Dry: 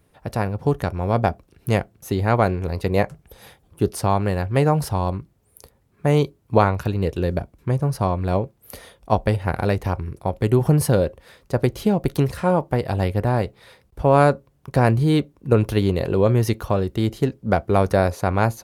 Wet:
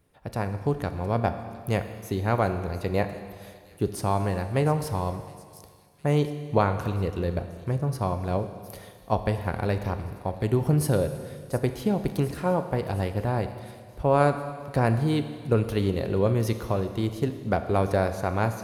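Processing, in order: feedback echo behind a high-pass 712 ms, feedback 63%, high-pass 4.8 kHz, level -13 dB; Schroeder reverb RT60 2 s, combs from 27 ms, DRR 9 dB; trim -6 dB

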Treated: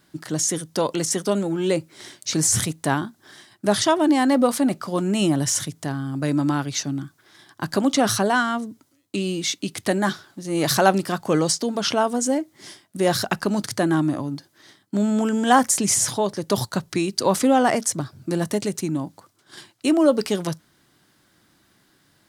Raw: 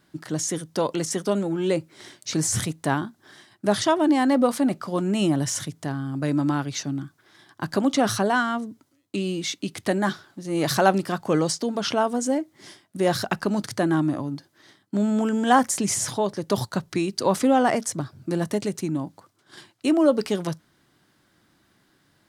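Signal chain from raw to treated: treble shelf 4.2 kHz +5.5 dB; trim +1.5 dB

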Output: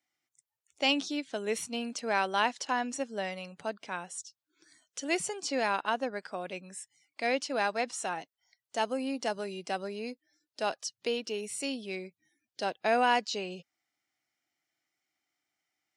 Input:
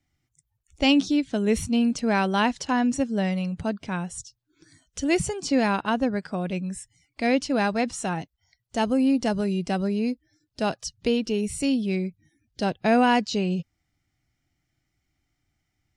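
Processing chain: high-pass 480 Hz 12 dB/octave; trim -3.5 dB

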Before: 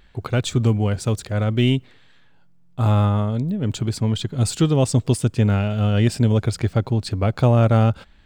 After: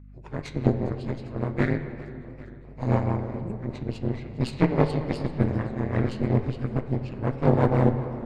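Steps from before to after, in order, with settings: frequency axis rescaled in octaves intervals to 82%; feedback echo behind a band-pass 64 ms, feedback 71%, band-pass 1.1 kHz, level -13.5 dB; rotary cabinet horn 6 Hz; Chebyshev shaper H 2 -12 dB, 3 -11 dB, 6 -31 dB, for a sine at -6.5 dBFS; reverberation RT60 2.7 s, pre-delay 17 ms, DRR 10 dB; hum 50 Hz, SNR 21 dB; in parallel at -7 dB: overload inside the chain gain 16.5 dB; on the sum: modulated delay 402 ms, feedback 70%, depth 113 cents, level -19.5 dB

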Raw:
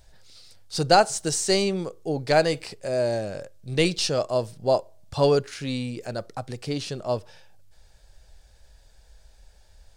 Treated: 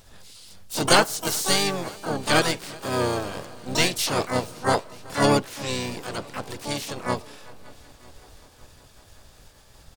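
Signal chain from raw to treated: spectral peaks clipped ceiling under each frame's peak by 13 dB; multi-head delay 189 ms, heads second and third, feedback 66%, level -23.5 dB; harmony voices -5 st -6 dB, +7 st -8 dB, +12 st -4 dB; trim -2.5 dB

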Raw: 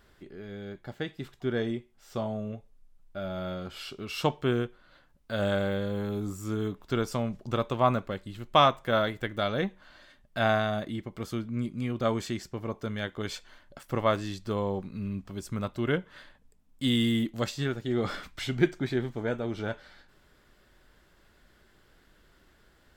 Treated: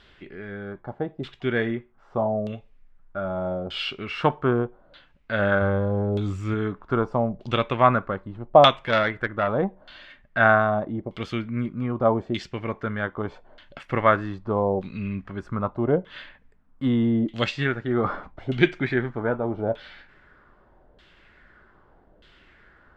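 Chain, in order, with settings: 5.61–6.54 s: peaking EQ 86 Hz +10 dB 0.6 oct; LFO low-pass saw down 0.81 Hz 600–3500 Hz; treble shelf 3.6 kHz +8 dB; 8.79–9.48 s: transformer saturation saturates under 1.2 kHz; trim +4 dB

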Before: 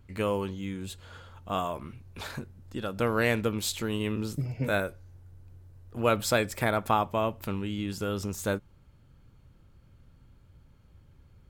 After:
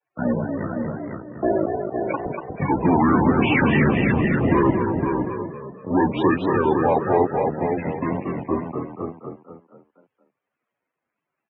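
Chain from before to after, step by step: pitch bend over the whole clip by -10 st ending unshifted; Doppler pass-by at 3.77 s, 18 m/s, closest 4.3 m; hum notches 50/100/150/200/250/300 Hz; fuzz box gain 59 dB, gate -55 dBFS; crackle 500 per s -58 dBFS; distance through air 150 m; delay 511 ms -5.5 dB; loudest bins only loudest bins 32; on a send: frequency-shifting echo 238 ms, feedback 42%, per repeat +41 Hz, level -6 dB; on the sum: mistuned SSB -73 Hz 210–3000 Hz; warped record 33 1/3 rpm, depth 100 cents

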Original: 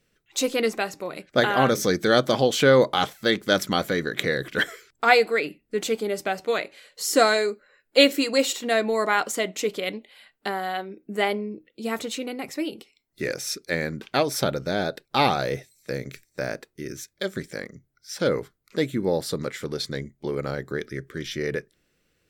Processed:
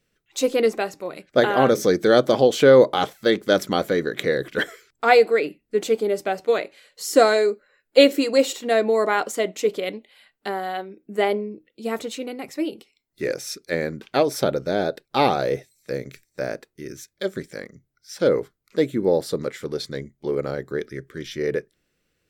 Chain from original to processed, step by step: dynamic bell 440 Hz, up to +8 dB, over -34 dBFS, Q 0.73; trim -2.5 dB

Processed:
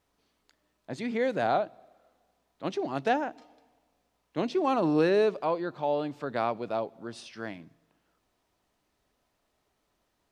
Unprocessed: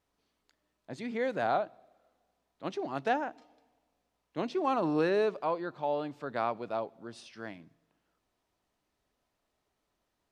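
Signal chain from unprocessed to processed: dynamic bell 1.2 kHz, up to -4 dB, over -42 dBFS, Q 0.85; trim +5 dB

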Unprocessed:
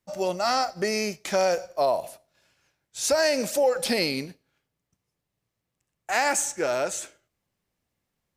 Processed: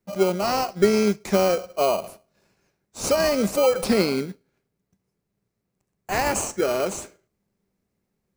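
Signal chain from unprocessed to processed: graphic EQ with 31 bands 200 Hz +11 dB, 400 Hz +9 dB, 3.15 kHz -9 dB; in parallel at -3.5 dB: sample-rate reducer 1.8 kHz, jitter 0%; on the sum: trim -2 dB

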